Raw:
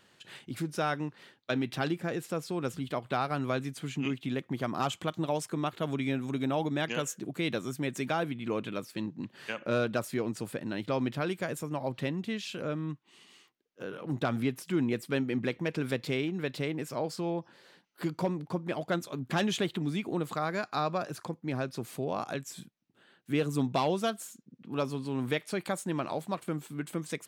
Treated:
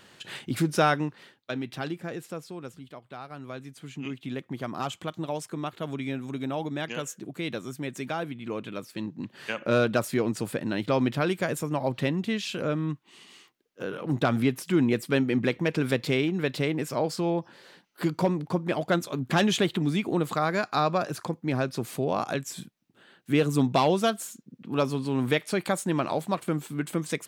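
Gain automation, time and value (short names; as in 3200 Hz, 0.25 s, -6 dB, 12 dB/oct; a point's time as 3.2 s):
0.83 s +9 dB
1.52 s -2 dB
2.26 s -2 dB
3.05 s -12 dB
4.32 s -1 dB
8.6 s -1 dB
9.78 s +6 dB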